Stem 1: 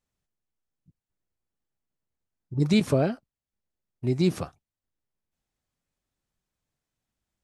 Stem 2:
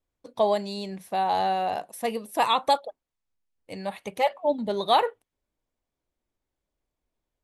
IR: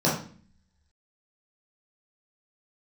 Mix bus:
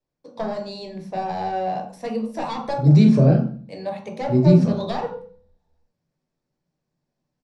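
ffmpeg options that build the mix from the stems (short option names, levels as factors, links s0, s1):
-filter_complex "[0:a]adelay=250,volume=0.355,asplit=2[s0][s1];[s1]volume=0.447[s2];[1:a]bandreject=f=50:t=h:w=6,bandreject=f=100:t=h:w=6,bandreject=f=150:t=h:w=6,bandreject=f=200:t=h:w=6,bandreject=f=250:t=h:w=6,bandreject=f=300:t=h:w=6,bandreject=f=350:t=h:w=6,bandreject=f=400:t=h:w=6,bandreject=f=450:t=h:w=6,bandreject=f=500:t=h:w=6,aeval=exprs='clip(val(0),-1,0.0668)':c=same,acrossover=split=330[s3][s4];[s4]acompressor=threshold=0.0447:ratio=6[s5];[s3][s5]amix=inputs=2:normalize=0,volume=0.531,asplit=2[s6][s7];[s7]volume=0.282[s8];[2:a]atrim=start_sample=2205[s9];[s2][s8]amix=inputs=2:normalize=0[s10];[s10][s9]afir=irnorm=-1:irlink=0[s11];[s0][s6][s11]amix=inputs=3:normalize=0,lowpass=f=8200:w=0.5412,lowpass=f=8200:w=1.3066,lowshelf=f=84:g=5.5"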